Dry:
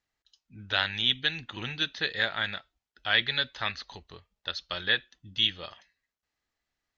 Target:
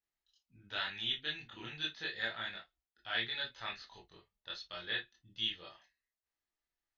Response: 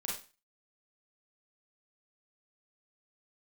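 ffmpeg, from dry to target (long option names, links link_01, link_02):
-filter_complex "[1:a]atrim=start_sample=2205,afade=type=out:start_time=0.2:duration=0.01,atrim=end_sample=9261,asetrate=79380,aresample=44100[link_01];[0:a][link_01]afir=irnorm=-1:irlink=0,volume=-6.5dB"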